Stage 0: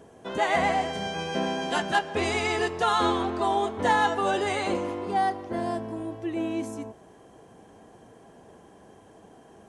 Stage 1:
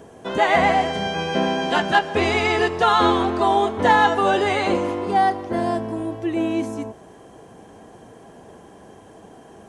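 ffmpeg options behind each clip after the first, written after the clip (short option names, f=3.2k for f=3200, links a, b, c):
-filter_complex "[0:a]acrossover=split=5100[a][b];[b]acompressor=threshold=-53dB:ratio=4:attack=1:release=60[c];[a][c]amix=inputs=2:normalize=0,volume=7dB"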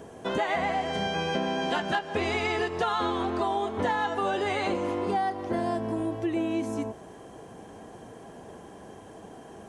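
-af "acompressor=threshold=-24dB:ratio=6,volume=-1dB"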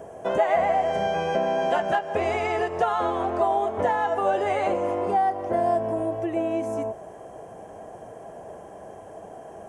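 -af "equalizer=f=250:t=o:w=0.67:g=-5,equalizer=f=630:t=o:w=0.67:g=11,equalizer=f=4k:t=o:w=0.67:g=-11"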